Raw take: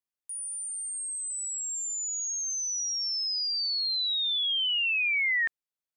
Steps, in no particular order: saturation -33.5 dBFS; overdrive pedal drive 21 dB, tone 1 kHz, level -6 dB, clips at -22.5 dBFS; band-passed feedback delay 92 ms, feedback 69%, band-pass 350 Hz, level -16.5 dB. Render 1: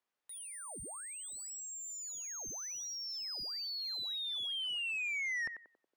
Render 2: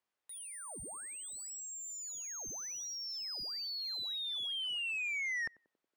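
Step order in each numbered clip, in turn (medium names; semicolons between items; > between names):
band-passed feedback delay > overdrive pedal > saturation; overdrive pedal > saturation > band-passed feedback delay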